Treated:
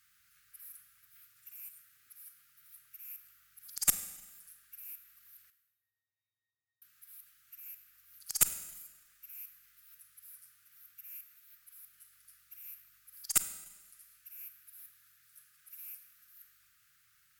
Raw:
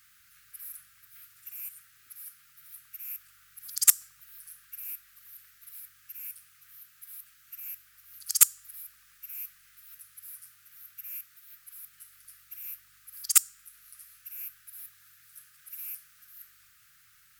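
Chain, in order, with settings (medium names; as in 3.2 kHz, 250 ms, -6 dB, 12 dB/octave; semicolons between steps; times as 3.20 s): 5.50–6.82 s: pitch-class resonator A#, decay 0.52 s; Chebyshev shaper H 4 -19 dB, 6 -34 dB, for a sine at -1 dBFS; Schroeder reverb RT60 1.1 s, combs from 33 ms, DRR 11 dB; trim -8 dB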